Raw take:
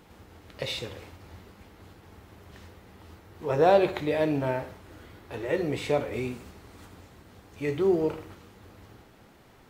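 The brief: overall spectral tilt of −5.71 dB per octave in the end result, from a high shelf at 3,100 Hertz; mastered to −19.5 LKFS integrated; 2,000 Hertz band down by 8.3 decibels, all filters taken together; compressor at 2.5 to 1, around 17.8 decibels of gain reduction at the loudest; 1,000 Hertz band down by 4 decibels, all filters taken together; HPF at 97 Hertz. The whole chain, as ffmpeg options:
ffmpeg -i in.wav -af "highpass=97,equalizer=frequency=1000:width_type=o:gain=-4.5,equalizer=frequency=2000:width_type=o:gain=-8,highshelf=frequency=3100:gain=-3.5,acompressor=threshold=-46dB:ratio=2.5,volume=27dB" out.wav

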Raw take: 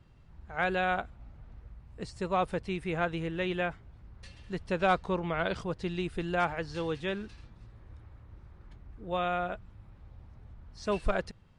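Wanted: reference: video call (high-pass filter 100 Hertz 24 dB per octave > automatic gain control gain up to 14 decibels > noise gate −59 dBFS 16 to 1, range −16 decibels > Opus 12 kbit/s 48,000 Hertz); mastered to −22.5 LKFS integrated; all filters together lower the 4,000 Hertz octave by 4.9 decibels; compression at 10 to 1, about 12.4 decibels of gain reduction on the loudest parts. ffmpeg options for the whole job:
ffmpeg -i in.wav -af "equalizer=frequency=4000:width_type=o:gain=-6.5,acompressor=threshold=-34dB:ratio=10,highpass=frequency=100:width=0.5412,highpass=frequency=100:width=1.3066,dynaudnorm=maxgain=14dB,agate=range=-16dB:threshold=-59dB:ratio=16,volume=18dB" -ar 48000 -c:a libopus -b:a 12k out.opus

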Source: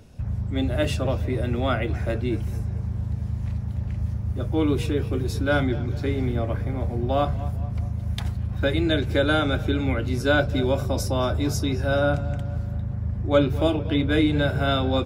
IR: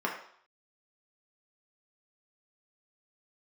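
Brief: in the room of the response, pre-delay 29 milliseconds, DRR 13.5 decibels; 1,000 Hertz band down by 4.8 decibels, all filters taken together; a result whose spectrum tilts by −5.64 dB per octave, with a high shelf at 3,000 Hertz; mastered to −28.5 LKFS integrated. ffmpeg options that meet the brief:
-filter_complex "[0:a]equalizer=frequency=1000:width_type=o:gain=-8.5,highshelf=frequency=3000:gain=4,asplit=2[link_01][link_02];[1:a]atrim=start_sample=2205,adelay=29[link_03];[link_02][link_03]afir=irnorm=-1:irlink=0,volume=-22dB[link_04];[link_01][link_04]amix=inputs=2:normalize=0,volume=-3dB"

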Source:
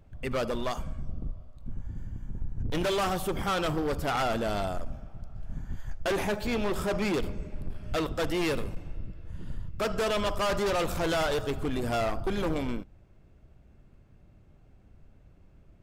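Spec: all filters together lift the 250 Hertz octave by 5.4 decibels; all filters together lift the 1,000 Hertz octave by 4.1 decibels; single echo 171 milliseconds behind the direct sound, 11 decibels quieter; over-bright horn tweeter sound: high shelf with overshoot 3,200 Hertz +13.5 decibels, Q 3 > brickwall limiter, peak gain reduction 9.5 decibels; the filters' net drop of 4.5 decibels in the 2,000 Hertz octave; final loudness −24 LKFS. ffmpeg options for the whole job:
ffmpeg -i in.wav -af "equalizer=frequency=250:width_type=o:gain=7,equalizer=frequency=1000:width_type=o:gain=8.5,equalizer=frequency=2000:width_type=o:gain=-4.5,highshelf=frequency=3200:width_type=q:width=3:gain=13.5,aecho=1:1:171:0.282,volume=2.5dB,alimiter=limit=-13.5dB:level=0:latency=1" out.wav

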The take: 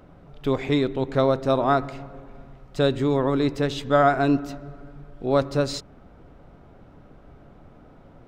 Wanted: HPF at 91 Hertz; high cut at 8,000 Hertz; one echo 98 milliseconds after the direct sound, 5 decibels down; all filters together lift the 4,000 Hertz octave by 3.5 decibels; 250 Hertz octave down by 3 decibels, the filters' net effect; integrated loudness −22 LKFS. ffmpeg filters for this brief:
ffmpeg -i in.wav -af "highpass=91,lowpass=8000,equalizer=frequency=250:width_type=o:gain=-3.5,equalizer=frequency=4000:width_type=o:gain=4,aecho=1:1:98:0.562,volume=1dB" out.wav

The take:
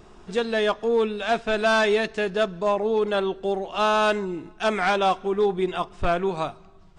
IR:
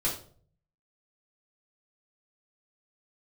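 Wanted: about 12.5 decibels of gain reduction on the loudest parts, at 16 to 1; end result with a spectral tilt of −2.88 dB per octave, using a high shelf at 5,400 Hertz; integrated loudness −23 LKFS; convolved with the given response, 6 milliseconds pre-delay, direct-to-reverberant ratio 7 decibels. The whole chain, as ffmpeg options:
-filter_complex "[0:a]highshelf=frequency=5400:gain=8.5,acompressor=threshold=-29dB:ratio=16,asplit=2[link_01][link_02];[1:a]atrim=start_sample=2205,adelay=6[link_03];[link_02][link_03]afir=irnorm=-1:irlink=0,volume=-14dB[link_04];[link_01][link_04]amix=inputs=2:normalize=0,volume=9.5dB"

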